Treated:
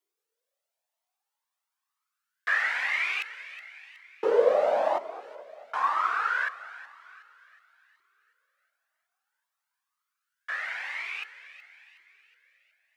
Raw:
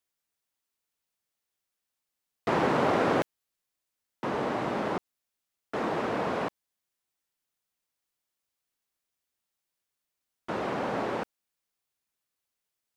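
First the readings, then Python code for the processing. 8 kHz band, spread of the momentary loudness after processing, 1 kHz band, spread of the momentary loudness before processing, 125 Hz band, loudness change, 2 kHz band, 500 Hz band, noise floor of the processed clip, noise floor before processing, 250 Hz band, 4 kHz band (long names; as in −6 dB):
can't be measured, 21 LU, +1.0 dB, 12 LU, below −25 dB, +2.5 dB, +8.5 dB, +2.5 dB, below −85 dBFS, below −85 dBFS, −17.0 dB, +2.0 dB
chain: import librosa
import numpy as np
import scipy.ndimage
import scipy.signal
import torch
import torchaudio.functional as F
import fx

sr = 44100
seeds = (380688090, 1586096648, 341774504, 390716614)

y = fx.filter_lfo_highpass(x, sr, shape='saw_up', hz=0.25, low_hz=380.0, high_hz=4000.0, q=7.4)
y = fx.echo_split(y, sr, split_hz=1600.0, low_ms=220, high_ms=369, feedback_pct=52, wet_db=-14.0)
y = fx.comb_cascade(y, sr, direction='rising', hz=1.0)
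y = y * 10.0 ** (2.0 / 20.0)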